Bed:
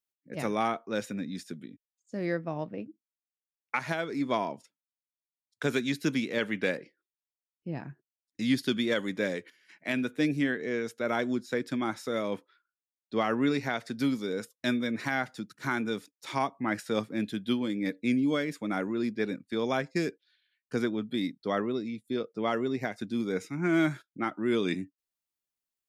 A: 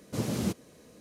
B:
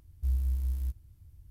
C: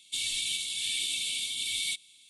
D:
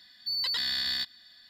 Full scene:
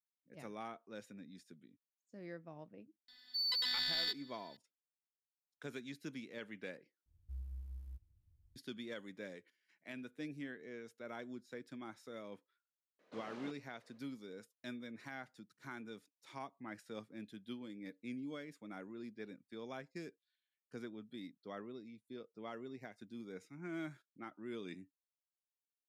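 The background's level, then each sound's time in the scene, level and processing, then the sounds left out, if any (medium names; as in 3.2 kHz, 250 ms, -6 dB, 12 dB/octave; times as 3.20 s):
bed -18 dB
3.08 s: add D -5 dB + robot voice 250 Hz
7.06 s: replace with B -17 dB + treble shelf 4.6 kHz -8.5 dB
12.99 s: add A -10 dB + band-pass 600–2500 Hz
not used: C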